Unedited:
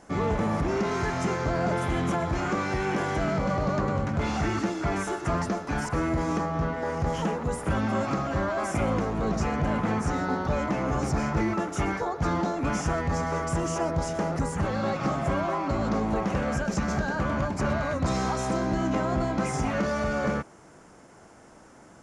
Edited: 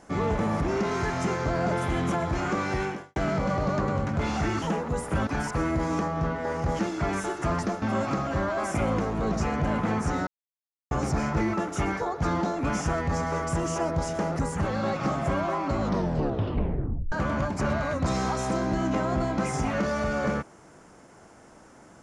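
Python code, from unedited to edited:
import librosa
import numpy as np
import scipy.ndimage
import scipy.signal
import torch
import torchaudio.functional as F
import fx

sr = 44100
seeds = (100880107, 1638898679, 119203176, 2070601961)

y = fx.edit(x, sr, fx.fade_out_span(start_s=2.83, length_s=0.33, curve='qua'),
    fx.swap(start_s=4.62, length_s=1.03, other_s=7.17, other_length_s=0.65),
    fx.silence(start_s=10.27, length_s=0.64),
    fx.tape_stop(start_s=15.8, length_s=1.32), tone=tone)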